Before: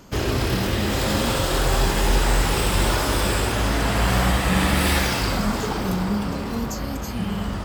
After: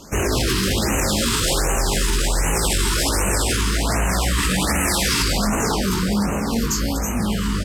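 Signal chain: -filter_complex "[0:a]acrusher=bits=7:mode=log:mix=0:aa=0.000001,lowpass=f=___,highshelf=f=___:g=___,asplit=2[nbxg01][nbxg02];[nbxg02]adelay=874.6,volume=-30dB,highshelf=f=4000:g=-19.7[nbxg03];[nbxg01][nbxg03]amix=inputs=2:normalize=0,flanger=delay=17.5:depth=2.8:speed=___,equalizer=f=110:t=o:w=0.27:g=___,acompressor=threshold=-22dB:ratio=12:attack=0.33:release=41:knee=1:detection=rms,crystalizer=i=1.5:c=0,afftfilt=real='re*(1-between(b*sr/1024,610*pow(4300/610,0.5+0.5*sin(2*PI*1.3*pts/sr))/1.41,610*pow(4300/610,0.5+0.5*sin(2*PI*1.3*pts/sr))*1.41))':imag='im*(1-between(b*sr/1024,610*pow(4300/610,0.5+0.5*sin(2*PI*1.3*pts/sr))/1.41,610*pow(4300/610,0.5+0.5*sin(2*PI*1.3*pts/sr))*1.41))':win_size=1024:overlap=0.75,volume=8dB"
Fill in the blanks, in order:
9000, 6700, 4, 2.3, -5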